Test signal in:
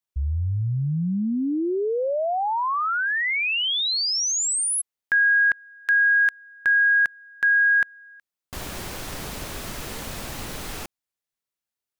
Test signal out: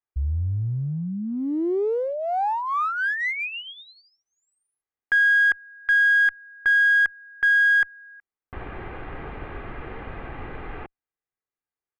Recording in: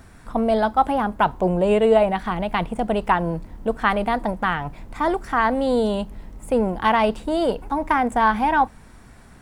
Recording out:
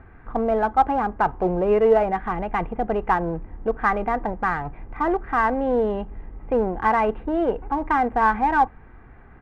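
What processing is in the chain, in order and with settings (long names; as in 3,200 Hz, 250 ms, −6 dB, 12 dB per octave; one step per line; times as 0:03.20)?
inverse Chebyshev low-pass filter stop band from 5,500 Hz, stop band 50 dB
comb filter 2.5 ms, depth 37%
in parallel at −9 dB: asymmetric clip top −25 dBFS
on the sum: level −3.5 dB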